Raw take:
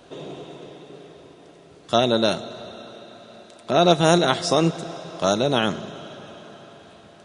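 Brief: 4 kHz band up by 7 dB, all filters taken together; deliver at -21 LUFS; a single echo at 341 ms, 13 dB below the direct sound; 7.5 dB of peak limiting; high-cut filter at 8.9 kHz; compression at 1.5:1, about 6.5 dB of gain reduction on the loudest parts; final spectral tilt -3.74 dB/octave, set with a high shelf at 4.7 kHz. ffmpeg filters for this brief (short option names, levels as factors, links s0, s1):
-af "lowpass=8900,equalizer=f=4000:t=o:g=5,highshelf=f=4700:g=7,acompressor=threshold=0.0398:ratio=1.5,alimiter=limit=0.211:level=0:latency=1,aecho=1:1:341:0.224,volume=2.24"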